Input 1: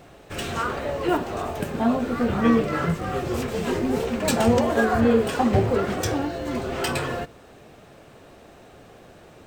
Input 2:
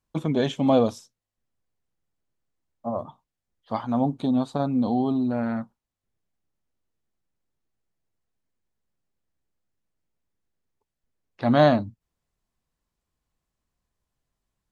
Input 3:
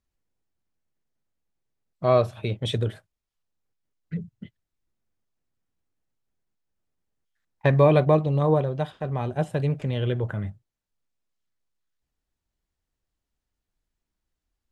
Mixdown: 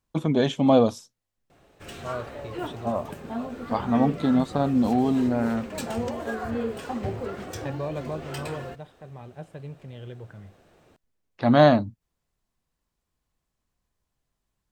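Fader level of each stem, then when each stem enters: -10.5 dB, +1.5 dB, -14.5 dB; 1.50 s, 0.00 s, 0.00 s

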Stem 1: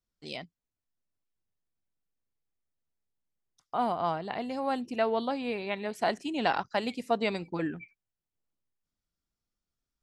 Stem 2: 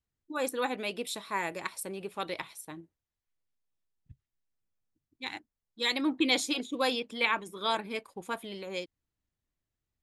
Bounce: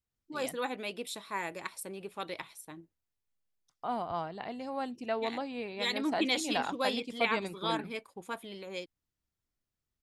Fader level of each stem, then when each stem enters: -5.5 dB, -3.5 dB; 0.10 s, 0.00 s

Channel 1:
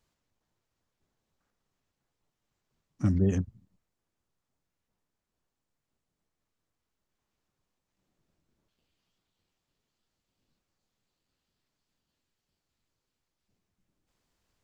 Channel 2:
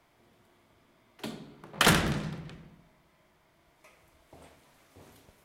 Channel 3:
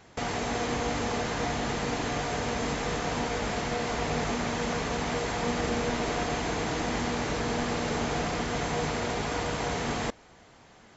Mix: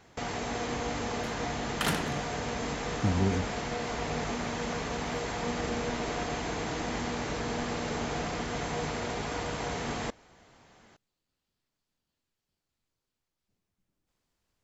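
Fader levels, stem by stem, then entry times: -2.5 dB, -8.0 dB, -3.5 dB; 0.00 s, 0.00 s, 0.00 s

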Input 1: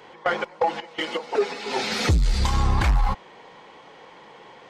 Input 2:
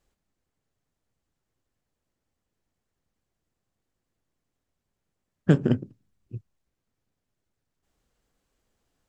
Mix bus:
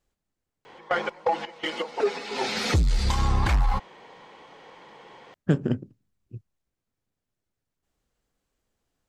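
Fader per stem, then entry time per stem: -2.0 dB, -3.0 dB; 0.65 s, 0.00 s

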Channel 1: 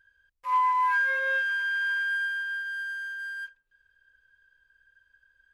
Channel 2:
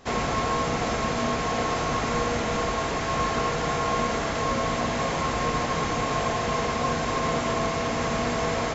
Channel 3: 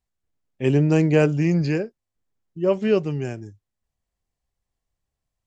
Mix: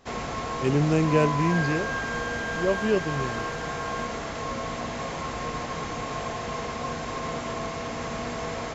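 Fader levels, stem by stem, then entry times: -6.5 dB, -6.0 dB, -4.5 dB; 0.60 s, 0.00 s, 0.00 s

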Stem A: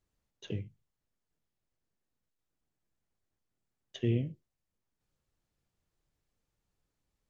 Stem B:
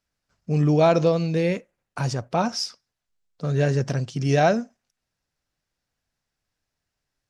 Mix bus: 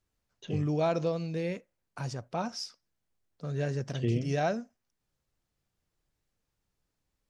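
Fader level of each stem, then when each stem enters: +0.5 dB, -10.5 dB; 0.00 s, 0.00 s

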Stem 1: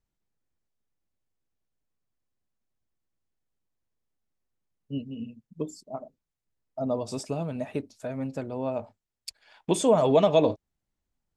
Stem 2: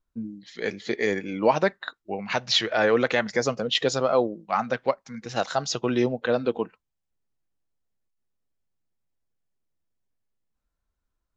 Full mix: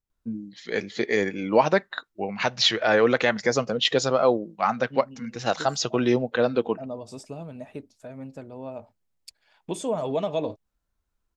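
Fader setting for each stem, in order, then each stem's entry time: -6.5 dB, +1.5 dB; 0.00 s, 0.10 s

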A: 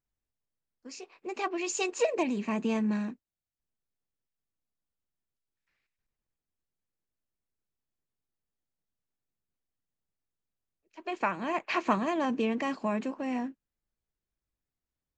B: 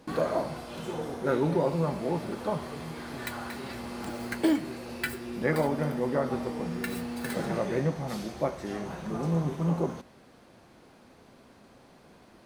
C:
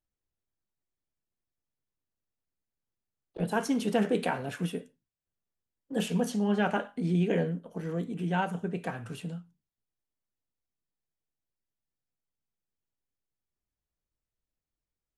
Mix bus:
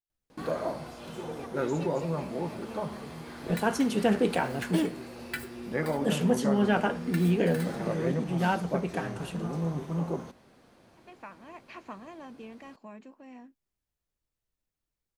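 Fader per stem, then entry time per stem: -16.0 dB, -3.5 dB, +2.0 dB; 0.00 s, 0.30 s, 0.10 s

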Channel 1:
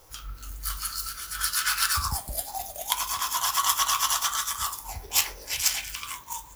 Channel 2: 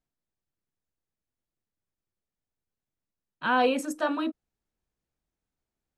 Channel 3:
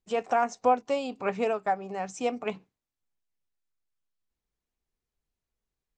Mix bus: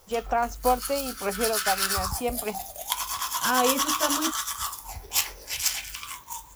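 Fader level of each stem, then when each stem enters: -1.5 dB, -1.0 dB, 0.0 dB; 0.00 s, 0.00 s, 0.00 s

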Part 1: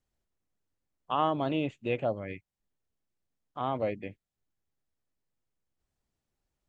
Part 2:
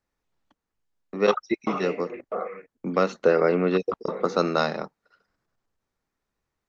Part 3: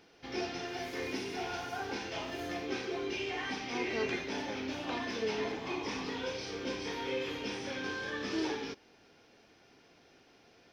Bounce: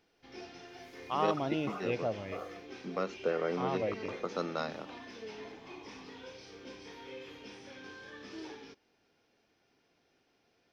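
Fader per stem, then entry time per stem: -4.0 dB, -12.5 dB, -11.0 dB; 0.00 s, 0.00 s, 0.00 s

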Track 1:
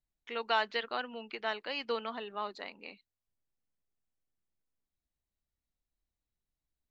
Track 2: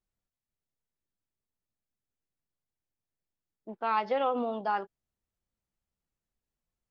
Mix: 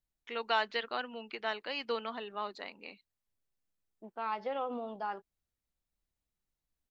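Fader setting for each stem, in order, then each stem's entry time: -0.5 dB, -7.5 dB; 0.00 s, 0.35 s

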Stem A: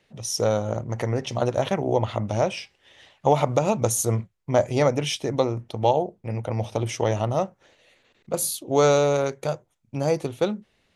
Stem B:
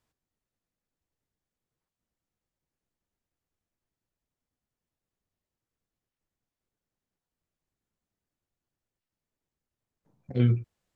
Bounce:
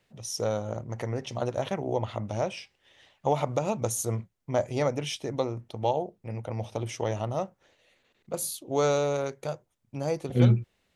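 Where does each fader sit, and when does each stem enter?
-6.5 dB, +2.5 dB; 0.00 s, 0.00 s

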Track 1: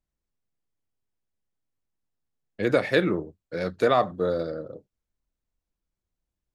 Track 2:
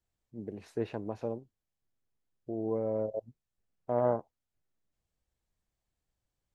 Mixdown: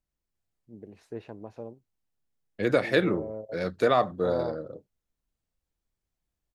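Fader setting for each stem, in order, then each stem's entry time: -1.5 dB, -5.0 dB; 0.00 s, 0.35 s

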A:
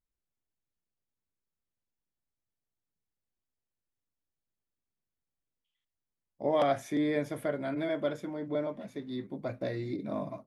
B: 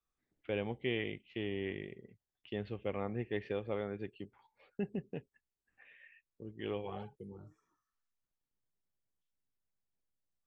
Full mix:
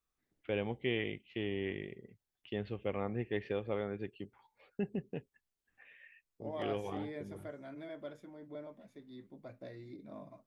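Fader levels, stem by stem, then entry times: -14.0 dB, +1.0 dB; 0.00 s, 0.00 s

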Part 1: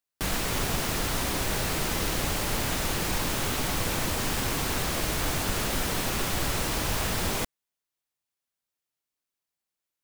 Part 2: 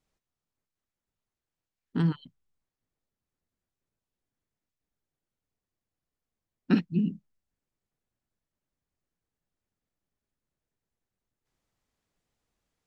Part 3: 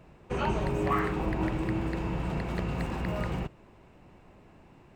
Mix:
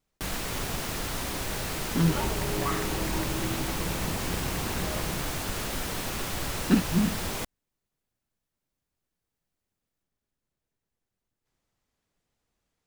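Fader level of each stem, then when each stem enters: -4.0 dB, +1.5 dB, -3.0 dB; 0.00 s, 0.00 s, 1.75 s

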